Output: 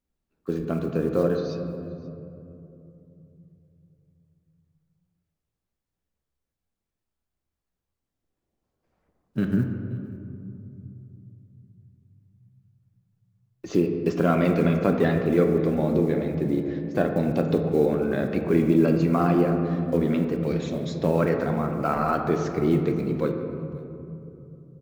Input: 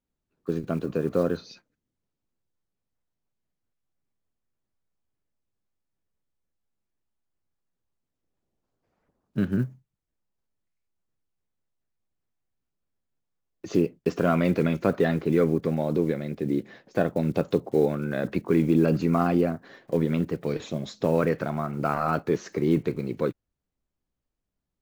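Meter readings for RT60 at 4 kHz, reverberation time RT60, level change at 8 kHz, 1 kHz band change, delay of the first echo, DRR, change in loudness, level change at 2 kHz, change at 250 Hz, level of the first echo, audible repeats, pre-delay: 1.4 s, 2.9 s, no reading, +2.0 dB, 528 ms, 4.0 dB, +2.0 dB, +1.0 dB, +2.5 dB, -21.5 dB, 1, 3 ms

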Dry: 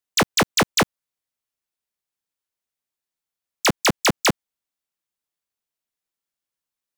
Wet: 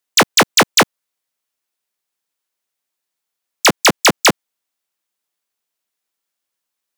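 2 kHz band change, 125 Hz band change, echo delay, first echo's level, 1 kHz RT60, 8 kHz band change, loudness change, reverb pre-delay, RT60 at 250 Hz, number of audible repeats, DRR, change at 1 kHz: +8.0 dB, +1.5 dB, no echo, no echo, no reverb, +8.0 dB, +7.5 dB, no reverb, no reverb, no echo, no reverb, +7.5 dB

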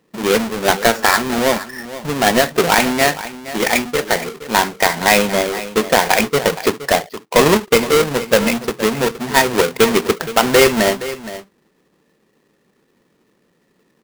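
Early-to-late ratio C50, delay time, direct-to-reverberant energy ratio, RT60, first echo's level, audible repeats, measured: no reverb, 469 ms, no reverb, no reverb, -14.5 dB, 1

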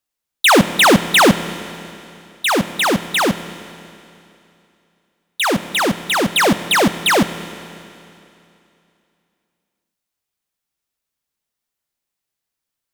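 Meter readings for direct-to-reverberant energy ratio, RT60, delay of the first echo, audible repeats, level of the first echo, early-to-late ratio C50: 11.5 dB, 2.8 s, no echo, no echo, no echo, 12.5 dB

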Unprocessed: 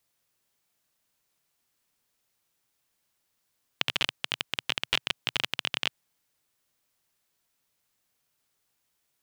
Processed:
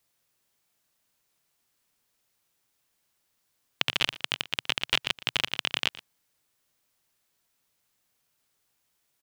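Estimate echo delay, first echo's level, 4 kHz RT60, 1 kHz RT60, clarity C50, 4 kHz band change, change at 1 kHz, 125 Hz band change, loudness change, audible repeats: 117 ms, -18.5 dB, no reverb, no reverb, no reverb, +1.5 dB, +1.5 dB, +1.5 dB, +1.5 dB, 1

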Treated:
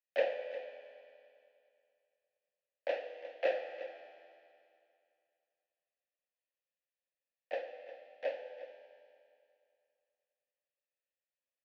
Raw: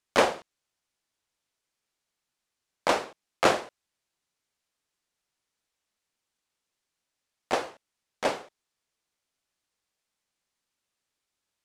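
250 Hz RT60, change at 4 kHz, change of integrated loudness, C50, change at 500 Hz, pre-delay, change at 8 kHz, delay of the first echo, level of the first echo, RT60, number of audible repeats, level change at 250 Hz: 2.5 s, -17.5 dB, -12.0 dB, 7.0 dB, -6.0 dB, 12 ms, under -35 dB, 356 ms, -14.5 dB, 2.5 s, 1, -24.0 dB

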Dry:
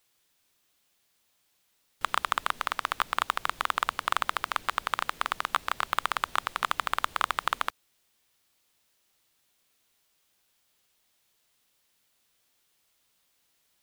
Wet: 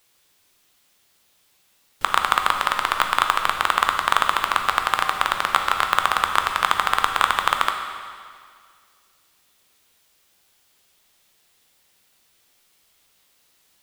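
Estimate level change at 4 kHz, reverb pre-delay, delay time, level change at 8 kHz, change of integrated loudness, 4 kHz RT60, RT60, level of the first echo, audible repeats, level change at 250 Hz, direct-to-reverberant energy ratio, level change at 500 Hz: +9.5 dB, 10 ms, no echo, +9.0 dB, +9.5 dB, 1.9 s, 2.0 s, no echo, no echo, +9.0 dB, 4.0 dB, +9.5 dB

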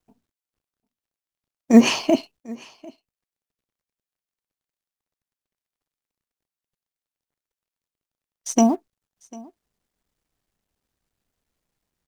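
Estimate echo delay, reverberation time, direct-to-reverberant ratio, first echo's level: 747 ms, no reverb, no reverb, -23.0 dB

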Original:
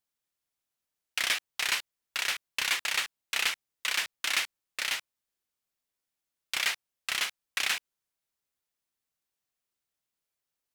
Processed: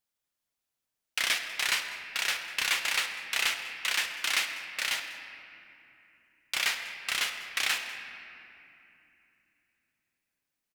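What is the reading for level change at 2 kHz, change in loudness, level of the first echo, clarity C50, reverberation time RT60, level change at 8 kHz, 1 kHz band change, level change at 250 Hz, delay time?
+1.5 dB, +1.0 dB, -18.0 dB, 6.5 dB, 2.9 s, +0.5 dB, +1.0 dB, +1.5 dB, 196 ms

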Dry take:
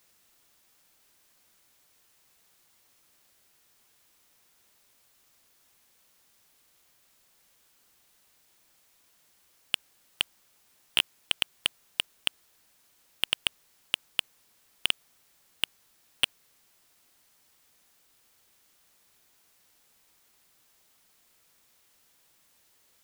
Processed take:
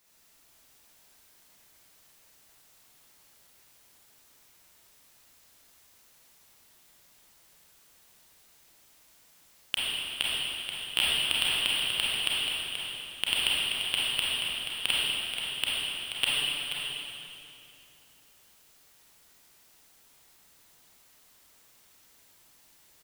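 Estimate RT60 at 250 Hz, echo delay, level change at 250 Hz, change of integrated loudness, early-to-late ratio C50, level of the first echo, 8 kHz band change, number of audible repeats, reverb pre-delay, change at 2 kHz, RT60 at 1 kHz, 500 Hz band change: 3.2 s, 481 ms, +5.5 dB, +3.0 dB, -5.5 dB, -7.5 dB, +5.0 dB, 1, 29 ms, +5.0 dB, 2.6 s, +5.5 dB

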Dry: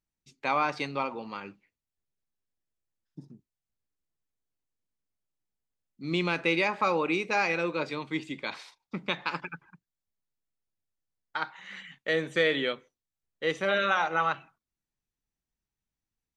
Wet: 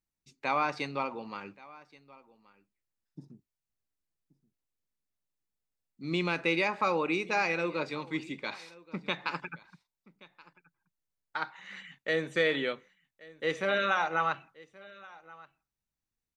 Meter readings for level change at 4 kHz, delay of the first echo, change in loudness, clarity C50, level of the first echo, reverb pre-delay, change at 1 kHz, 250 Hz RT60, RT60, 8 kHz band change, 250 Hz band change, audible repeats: -3.0 dB, 1127 ms, -2.0 dB, no reverb, -22.0 dB, no reverb, -2.0 dB, no reverb, no reverb, -2.0 dB, -2.0 dB, 1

